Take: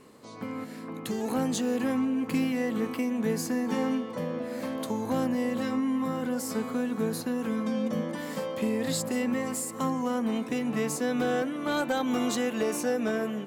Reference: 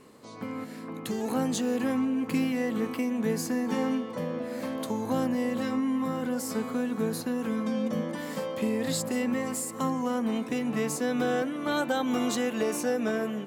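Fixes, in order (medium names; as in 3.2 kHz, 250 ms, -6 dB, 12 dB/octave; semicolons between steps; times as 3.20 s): clip repair -19 dBFS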